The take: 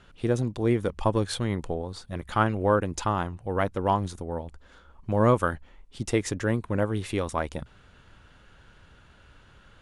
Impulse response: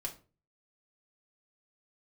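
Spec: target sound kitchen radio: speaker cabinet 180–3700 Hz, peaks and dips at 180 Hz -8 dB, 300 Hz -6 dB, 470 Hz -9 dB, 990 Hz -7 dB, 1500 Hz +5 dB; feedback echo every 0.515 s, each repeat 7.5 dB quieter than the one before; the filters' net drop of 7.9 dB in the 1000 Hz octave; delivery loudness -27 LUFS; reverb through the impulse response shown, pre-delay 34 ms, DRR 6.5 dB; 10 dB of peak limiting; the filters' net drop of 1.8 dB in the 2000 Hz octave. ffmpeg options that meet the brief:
-filter_complex "[0:a]equalizer=f=1k:t=o:g=-6.5,equalizer=f=2k:t=o:g=-3.5,alimiter=limit=-21dB:level=0:latency=1,aecho=1:1:515|1030|1545|2060|2575:0.422|0.177|0.0744|0.0312|0.0131,asplit=2[a][b];[1:a]atrim=start_sample=2205,adelay=34[c];[b][c]afir=irnorm=-1:irlink=0,volume=-6dB[d];[a][d]amix=inputs=2:normalize=0,highpass=180,equalizer=f=180:t=q:w=4:g=-8,equalizer=f=300:t=q:w=4:g=-6,equalizer=f=470:t=q:w=4:g=-9,equalizer=f=990:t=q:w=4:g=-7,equalizer=f=1.5k:t=q:w=4:g=5,lowpass=f=3.7k:w=0.5412,lowpass=f=3.7k:w=1.3066,volume=11dB"

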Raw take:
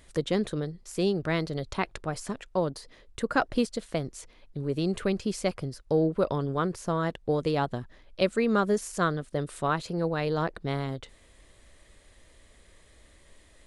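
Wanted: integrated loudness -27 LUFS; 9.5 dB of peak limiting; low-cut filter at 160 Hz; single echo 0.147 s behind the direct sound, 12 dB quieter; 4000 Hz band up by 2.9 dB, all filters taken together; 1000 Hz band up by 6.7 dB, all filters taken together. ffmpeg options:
-af "highpass=160,equalizer=f=1k:t=o:g=8.5,equalizer=f=4k:t=o:g=3,alimiter=limit=-14dB:level=0:latency=1,aecho=1:1:147:0.251,volume=2dB"

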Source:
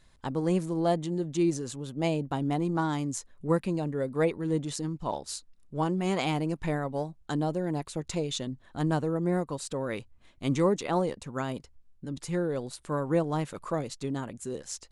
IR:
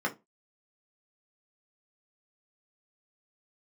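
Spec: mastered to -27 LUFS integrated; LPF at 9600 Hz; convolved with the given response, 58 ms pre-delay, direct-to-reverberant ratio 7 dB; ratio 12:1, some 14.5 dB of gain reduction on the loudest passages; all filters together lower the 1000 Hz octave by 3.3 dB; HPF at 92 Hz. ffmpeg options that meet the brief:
-filter_complex "[0:a]highpass=92,lowpass=9.6k,equalizer=f=1k:t=o:g=-4.5,acompressor=threshold=-36dB:ratio=12,asplit=2[a][b];[1:a]atrim=start_sample=2205,adelay=58[c];[b][c]afir=irnorm=-1:irlink=0,volume=-15dB[d];[a][d]amix=inputs=2:normalize=0,volume=13.5dB"

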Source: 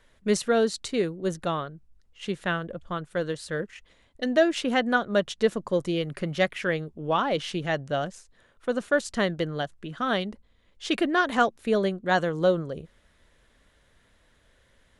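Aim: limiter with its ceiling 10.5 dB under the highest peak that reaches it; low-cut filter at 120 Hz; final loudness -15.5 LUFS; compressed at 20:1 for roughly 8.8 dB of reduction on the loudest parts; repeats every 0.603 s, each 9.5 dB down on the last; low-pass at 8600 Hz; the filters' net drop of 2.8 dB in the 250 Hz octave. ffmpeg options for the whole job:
-af "highpass=120,lowpass=8.6k,equalizer=f=250:t=o:g=-3.5,acompressor=threshold=-25dB:ratio=20,alimiter=level_in=1dB:limit=-24dB:level=0:latency=1,volume=-1dB,aecho=1:1:603|1206|1809|2412:0.335|0.111|0.0365|0.012,volume=20dB"

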